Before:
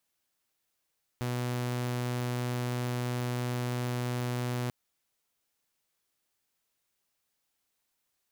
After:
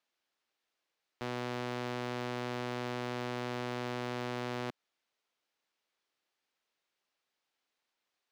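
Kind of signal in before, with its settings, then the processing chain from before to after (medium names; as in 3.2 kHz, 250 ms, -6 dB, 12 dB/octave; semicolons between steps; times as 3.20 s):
tone saw 123 Hz -27.5 dBFS 3.49 s
three-band isolator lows -14 dB, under 240 Hz, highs -18 dB, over 5.4 kHz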